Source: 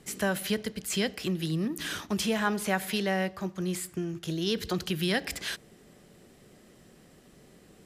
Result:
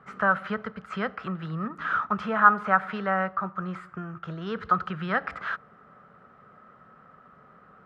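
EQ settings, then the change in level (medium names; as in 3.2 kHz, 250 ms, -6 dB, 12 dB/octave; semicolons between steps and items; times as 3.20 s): high-pass 150 Hz 6 dB/octave; resonant low-pass 1.3 kHz, resonance Q 11; peaking EQ 330 Hz -13 dB 0.59 oct; +2.0 dB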